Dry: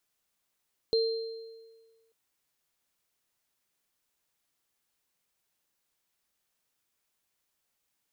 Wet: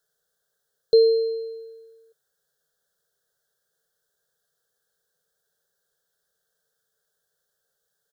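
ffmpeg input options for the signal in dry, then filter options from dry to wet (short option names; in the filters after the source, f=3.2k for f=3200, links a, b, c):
-f lavfi -i "aevalsrc='0.0794*pow(10,-3*t/1.51)*sin(2*PI*452*t)+0.0398*pow(10,-3*t/1.14)*sin(2*PI*4160*t)':d=1.19:s=44100"
-af "firequalizer=gain_entry='entry(110,0);entry(160,7);entry(290,-16);entry(430,14);entry(1000,-6);entry(1600,13);entry(2300,-29);entry(3300,2)':delay=0.05:min_phase=1"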